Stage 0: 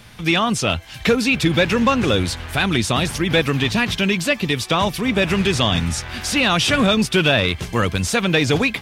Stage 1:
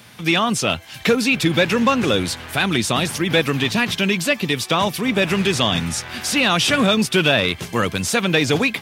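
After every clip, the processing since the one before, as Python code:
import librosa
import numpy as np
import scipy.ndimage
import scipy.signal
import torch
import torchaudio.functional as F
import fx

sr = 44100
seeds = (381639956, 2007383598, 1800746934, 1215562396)

y = scipy.signal.sosfilt(scipy.signal.butter(2, 130.0, 'highpass', fs=sr, output='sos'), x)
y = fx.high_shelf(y, sr, hz=12000.0, db=7.5)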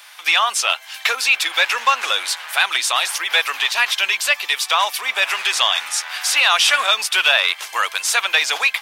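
y = scipy.signal.sosfilt(scipy.signal.butter(4, 810.0, 'highpass', fs=sr, output='sos'), x)
y = F.gain(torch.from_numpy(y), 4.0).numpy()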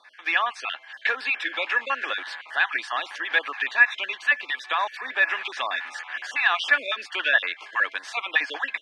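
y = fx.spec_dropout(x, sr, seeds[0], share_pct=25)
y = fx.bandpass_edges(y, sr, low_hz=210.0, high_hz=2600.0)
y = fx.small_body(y, sr, hz=(280.0, 1700.0), ring_ms=35, db=15)
y = F.gain(torch.from_numpy(y), -7.0).numpy()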